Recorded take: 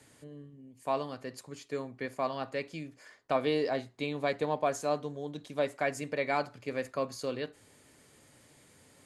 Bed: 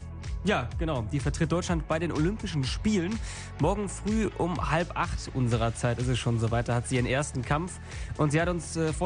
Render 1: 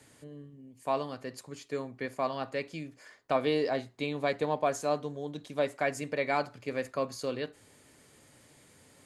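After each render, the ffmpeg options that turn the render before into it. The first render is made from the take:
ffmpeg -i in.wav -af "volume=1dB" out.wav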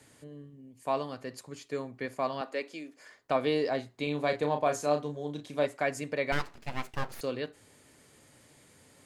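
ffmpeg -i in.wav -filter_complex "[0:a]asettb=1/sr,asplit=3[link_01][link_02][link_03];[link_01]atrim=end=2.414[link_04];[link_02]atrim=start=2.41:end=3,asetpts=PTS-STARTPTS,afade=type=in:duration=0.004:curve=qsin,afade=type=out:start_time=0.586:duration=0.004:curve=qsin,highpass=frequency=250:width=0.5412,highpass=frequency=250:width=1.3066[link_05];[link_03]atrim=start=2.996[link_06];[link_04][link_05]acrossfade=duration=0.004:curve1=hsin:curve2=qsin[link_07];[link_07][link_06]acrossfade=duration=0.004:curve1=qsin:curve2=hsin,asettb=1/sr,asplit=3[link_08][link_09][link_10];[link_08]atrim=end=4.034[link_11];[link_09]atrim=start=4.03:end=5.66,asetpts=PTS-STARTPTS,afade=type=in:duration=0.004:curve=qsin,afade=type=out:start_time=1.626:duration=0.004:curve=qsin,asplit=2[link_12][link_13];[link_13]adelay=34,volume=-7dB[link_14];[link_12][link_14]amix=inputs=2:normalize=0,atrim=end_sample=71883[link_15];[link_10]atrim=start=5.656[link_16];[link_11][link_15]acrossfade=duration=0.004:curve1=hsin:curve2=qsin[link_17];[link_17][link_16]acrossfade=duration=0.004:curve1=qsin:curve2=hsin,asettb=1/sr,asplit=3[link_18][link_19][link_20];[link_18]atrim=end=6.324[link_21];[link_19]atrim=start=6.32:end=7.21,asetpts=PTS-STARTPTS,afade=type=in:duration=0.004:curve=qsin,afade=type=out:start_time=0.886:duration=0.004:curve=qsin,aeval=exprs='abs(val(0))':channel_layout=same[link_22];[link_20]atrim=start=7.206[link_23];[link_21][link_22]acrossfade=duration=0.004:curve1=hsin:curve2=qsin[link_24];[link_24][link_23]acrossfade=duration=0.004:curve1=qsin:curve2=hsin" out.wav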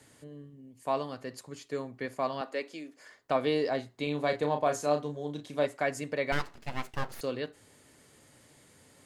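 ffmpeg -i in.wav -af "bandreject=frequency=2400:width=27" out.wav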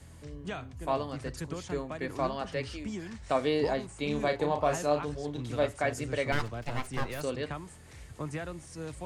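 ffmpeg -i in.wav -i bed.wav -filter_complex "[1:a]volume=-12dB[link_01];[0:a][link_01]amix=inputs=2:normalize=0" out.wav

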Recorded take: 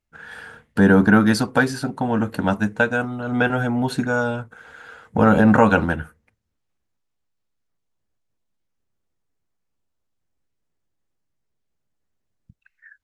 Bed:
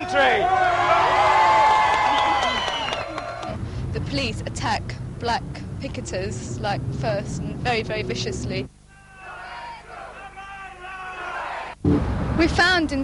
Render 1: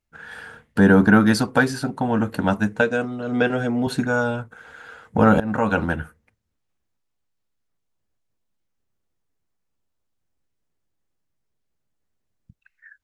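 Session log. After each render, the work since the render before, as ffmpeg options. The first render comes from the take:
ffmpeg -i in.wav -filter_complex "[0:a]asettb=1/sr,asplit=3[link_01][link_02][link_03];[link_01]atrim=end=2.814[link_04];[link_02]atrim=start=2.81:end=3.87,asetpts=PTS-STARTPTS,afade=type=in:duration=0.004:curve=qsin,afade=type=out:start_time=1.056:duration=0.004:curve=qsin,highpass=140,equalizer=frequency=440:width_type=q:width=4:gain=5,equalizer=frequency=870:width_type=q:width=4:gain=-8,equalizer=frequency=1400:width_type=q:width=4:gain=-5,equalizer=frequency=5000:width_type=q:width=4:gain=5,lowpass=frequency=9500:width=0.5412,lowpass=frequency=9500:width=1.3066[link_05];[link_03]atrim=start=3.866[link_06];[link_04][link_05]acrossfade=duration=0.004:curve1=hsin:curve2=qsin[link_07];[link_07][link_06]acrossfade=duration=0.004:curve1=qsin:curve2=hsin,asplit=2[link_08][link_09];[link_08]atrim=end=5.4,asetpts=PTS-STARTPTS,afade=type=out:start_time=5.396:duration=0.004:curve=hsin:silence=0.11885[link_10];[link_09]atrim=start=5.4,asetpts=PTS-STARTPTS,afade=type=in:duration=0.6:silence=0.11885[link_11];[link_10][link_11]concat=n=2:v=0:a=1" out.wav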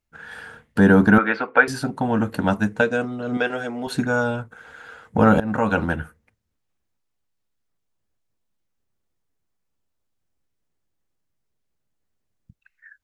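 ffmpeg -i in.wav -filter_complex "[0:a]asettb=1/sr,asplit=3[link_01][link_02][link_03];[link_01]atrim=end=1.184[link_04];[link_02]atrim=start=1.18:end=1.68,asetpts=PTS-STARTPTS,afade=type=in:duration=0.004:curve=qsin,afade=type=out:start_time=0.496:duration=0.004:curve=qsin,highpass=460,equalizer=frequency=470:width_type=q:width=4:gain=5,equalizer=frequency=1400:width_type=q:width=4:gain=6,equalizer=frequency=2300:width_type=q:width=4:gain=8,lowpass=frequency=2800:width=0.5412,lowpass=frequency=2800:width=1.3066[link_05];[link_03]atrim=start=1.676[link_06];[link_04][link_05]acrossfade=duration=0.004:curve1=hsin:curve2=qsin[link_07];[link_07][link_06]acrossfade=duration=0.004:curve1=qsin:curve2=hsin,asettb=1/sr,asplit=3[link_08][link_09][link_10];[link_08]atrim=end=3.374[link_11];[link_09]atrim=start=3.37:end=3.95,asetpts=PTS-STARTPTS,afade=type=in:duration=0.004:curve=qsin,afade=type=out:start_time=0.576:duration=0.004:curve=qsin,equalizer=frequency=120:width_type=o:width=2.6:gain=-13.5[link_12];[link_10]atrim=start=3.946[link_13];[link_11][link_12]acrossfade=duration=0.004:curve1=hsin:curve2=qsin[link_14];[link_14][link_13]acrossfade=duration=0.004:curve1=qsin:curve2=hsin" out.wav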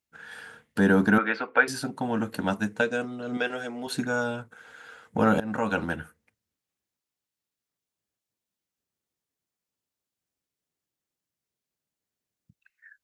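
ffmpeg -i in.wav -af "highpass=frequency=330:poles=1,equalizer=frequency=930:width_type=o:width=2.9:gain=-6" out.wav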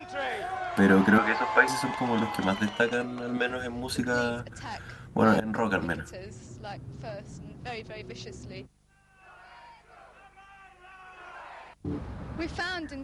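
ffmpeg -i in.wav -i bed.wav -filter_complex "[1:a]volume=-15dB[link_01];[0:a][link_01]amix=inputs=2:normalize=0" out.wav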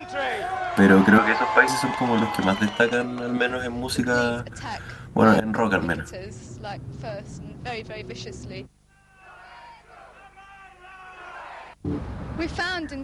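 ffmpeg -i in.wav -af "volume=5.5dB,alimiter=limit=-3dB:level=0:latency=1" out.wav

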